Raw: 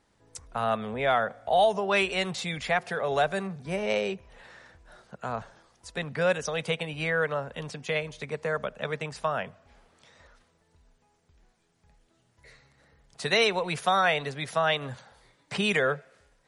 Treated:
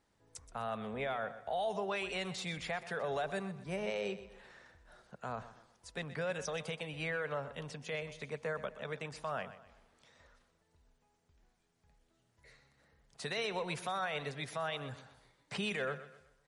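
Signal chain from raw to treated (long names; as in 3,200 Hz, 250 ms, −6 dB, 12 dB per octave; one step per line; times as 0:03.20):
brickwall limiter −20.5 dBFS, peak gain reduction 10 dB
repeating echo 125 ms, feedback 37%, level −14 dB
level −7.5 dB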